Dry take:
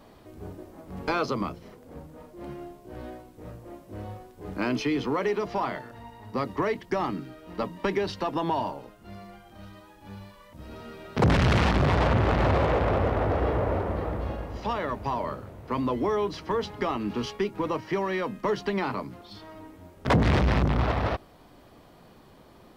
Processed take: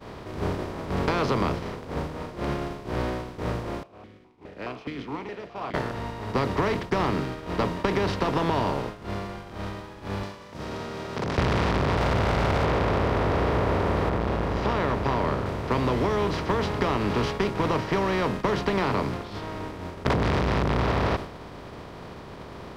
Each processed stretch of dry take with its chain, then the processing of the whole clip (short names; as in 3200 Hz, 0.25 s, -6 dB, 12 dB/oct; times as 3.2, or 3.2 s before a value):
3.83–5.74 dynamic EQ 470 Hz, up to -5 dB, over -41 dBFS, Q 1.3 + vowel sequencer 4.8 Hz
10.23–11.38 HPF 150 Hz + bell 6000 Hz +11.5 dB 1 oct + compressor 5:1, threshold -41 dBFS
11.97–12.64 minimum comb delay 1.4 ms + hard clip -17.5 dBFS
14.09–15.46 high shelf 4200 Hz -12 dB + core saturation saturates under 390 Hz
whole clip: per-bin compression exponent 0.4; expander -20 dBFS; compressor, threshold -20 dBFS